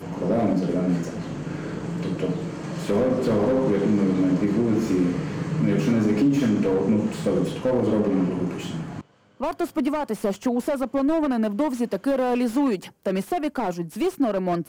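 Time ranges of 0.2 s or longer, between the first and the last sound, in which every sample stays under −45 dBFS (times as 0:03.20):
0:09.01–0:09.40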